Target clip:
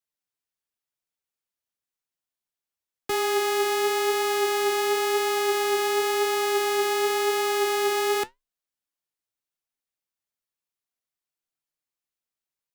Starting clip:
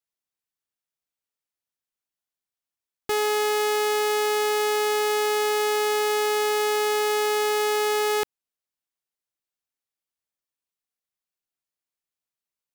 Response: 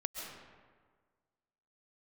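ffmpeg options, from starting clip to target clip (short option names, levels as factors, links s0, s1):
-af "flanger=delay=5.4:depth=5.3:regen=72:speed=0.94:shape=triangular,afreqshift=-17,volume=1.5"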